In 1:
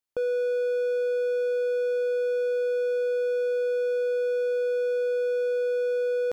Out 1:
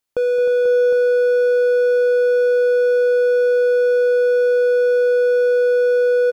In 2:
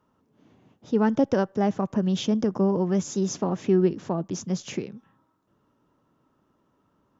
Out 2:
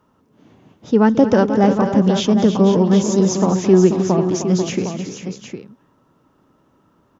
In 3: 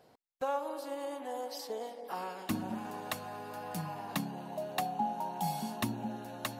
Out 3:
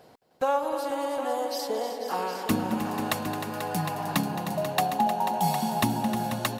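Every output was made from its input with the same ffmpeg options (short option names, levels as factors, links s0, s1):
-af "aecho=1:1:218|309|489|759:0.211|0.299|0.316|0.335,volume=2.66"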